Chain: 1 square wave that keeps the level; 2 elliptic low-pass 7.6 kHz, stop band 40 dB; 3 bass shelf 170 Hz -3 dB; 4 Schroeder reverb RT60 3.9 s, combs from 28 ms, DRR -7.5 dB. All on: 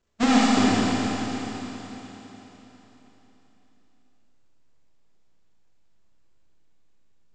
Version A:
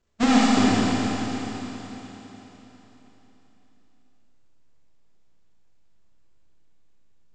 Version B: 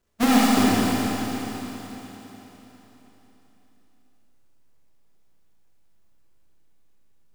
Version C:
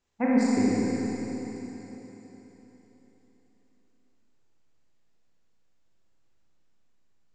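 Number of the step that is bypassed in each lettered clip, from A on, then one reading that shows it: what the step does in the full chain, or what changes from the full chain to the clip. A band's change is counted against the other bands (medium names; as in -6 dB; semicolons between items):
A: 3, 125 Hz band +2.0 dB; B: 2, 8 kHz band +2.0 dB; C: 1, distortion -5 dB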